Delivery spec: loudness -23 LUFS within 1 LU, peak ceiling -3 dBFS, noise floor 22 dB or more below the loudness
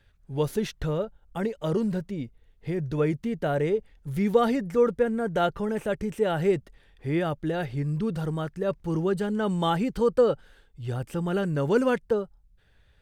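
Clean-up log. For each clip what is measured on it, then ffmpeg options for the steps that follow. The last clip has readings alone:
loudness -27.0 LUFS; peak -9.0 dBFS; loudness target -23.0 LUFS
-> -af "volume=4dB"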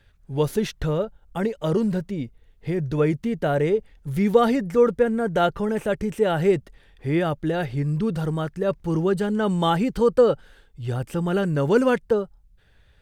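loudness -23.0 LUFS; peak -5.0 dBFS; noise floor -57 dBFS

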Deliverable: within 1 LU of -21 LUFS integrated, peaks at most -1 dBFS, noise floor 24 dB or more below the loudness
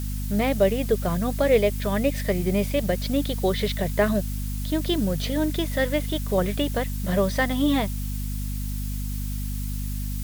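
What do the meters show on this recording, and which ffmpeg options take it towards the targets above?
hum 50 Hz; harmonics up to 250 Hz; hum level -26 dBFS; noise floor -29 dBFS; noise floor target -49 dBFS; loudness -25.0 LUFS; peak -8.0 dBFS; loudness target -21.0 LUFS
-> -af "bandreject=f=50:t=h:w=6,bandreject=f=100:t=h:w=6,bandreject=f=150:t=h:w=6,bandreject=f=200:t=h:w=6,bandreject=f=250:t=h:w=6"
-af "afftdn=nr=20:nf=-29"
-af "volume=4dB"

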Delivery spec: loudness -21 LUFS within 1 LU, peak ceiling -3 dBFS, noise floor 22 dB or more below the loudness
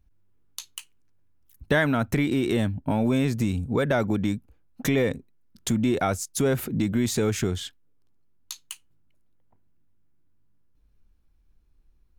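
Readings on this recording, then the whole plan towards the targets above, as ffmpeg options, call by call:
loudness -25.5 LUFS; peak -10.5 dBFS; loudness target -21.0 LUFS
-> -af "volume=4.5dB"

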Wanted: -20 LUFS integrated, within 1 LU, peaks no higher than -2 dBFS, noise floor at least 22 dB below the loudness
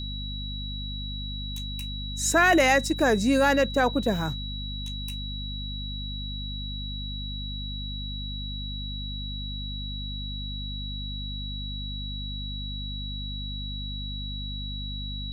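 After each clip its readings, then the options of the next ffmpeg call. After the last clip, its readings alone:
hum 50 Hz; harmonics up to 250 Hz; hum level -32 dBFS; steady tone 3900 Hz; tone level -36 dBFS; loudness -29.0 LUFS; peak -10.0 dBFS; loudness target -20.0 LUFS
-> -af "bandreject=f=50:t=h:w=6,bandreject=f=100:t=h:w=6,bandreject=f=150:t=h:w=6,bandreject=f=200:t=h:w=6,bandreject=f=250:t=h:w=6"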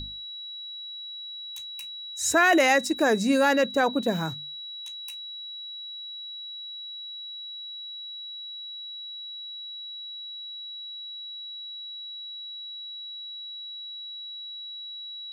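hum none; steady tone 3900 Hz; tone level -36 dBFS
-> -af "bandreject=f=3.9k:w=30"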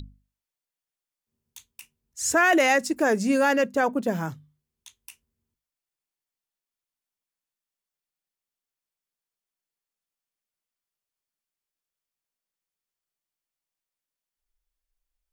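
steady tone none; loudness -22.5 LUFS; peak -11.0 dBFS; loudness target -20.0 LUFS
-> -af "volume=2.5dB"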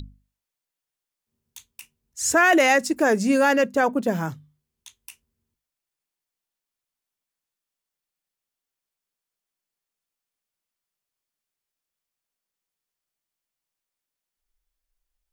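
loudness -20.0 LUFS; peak -8.5 dBFS; noise floor -88 dBFS

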